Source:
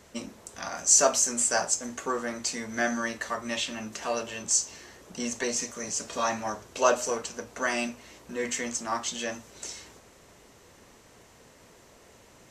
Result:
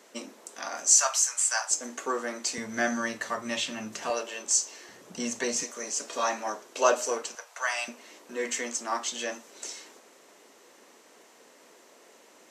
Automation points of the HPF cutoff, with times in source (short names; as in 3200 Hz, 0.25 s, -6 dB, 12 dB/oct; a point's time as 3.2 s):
HPF 24 dB/oct
260 Hz
from 0.94 s 860 Hz
from 1.71 s 250 Hz
from 2.58 s 110 Hz
from 4.1 s 300 Hz
from 4.89 s 130 Hz
from 5.63 s 270 Hz
from 7.35 s 710 Hz
from 7.88 s 260 Hz